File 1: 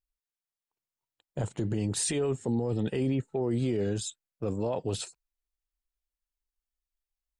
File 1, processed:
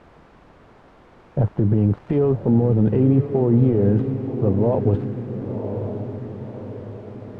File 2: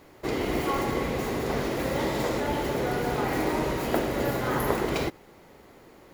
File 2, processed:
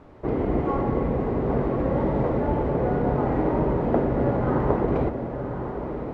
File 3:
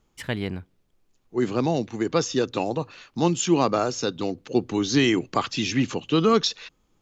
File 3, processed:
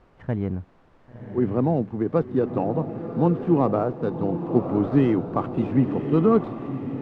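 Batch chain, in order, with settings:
switching dead time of 0.099 ms; bell 350 Hz -2.5 dB 0.39 oct; requantised 8-bit, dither triangular; LPF 1000 Hz 12 dB/oct; low shelf 270 Hz +5 dB; on a send: diffused feedback echo 1.075 s, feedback 47%, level -8 dB; on the sum: normalise peaks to -6 dBFS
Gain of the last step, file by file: +9.5, +3.0, +0.5 dB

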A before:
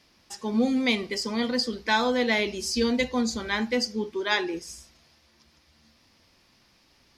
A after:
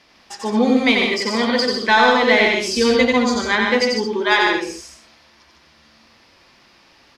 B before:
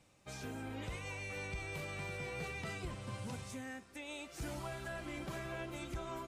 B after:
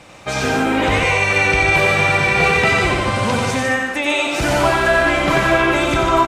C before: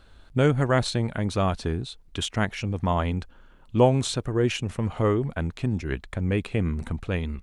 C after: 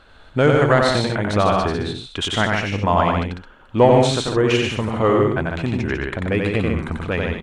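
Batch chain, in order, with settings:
overdrive pedal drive 10 dB, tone 2200 Hz, clips at -6 dBFS; loudspeakers at several distances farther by 31 m -3 dB, 51 m -5 dB, 74 m -11 dB; normalise peaks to -2 dBFS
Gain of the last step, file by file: +6.5, +24.5, +5.0 dB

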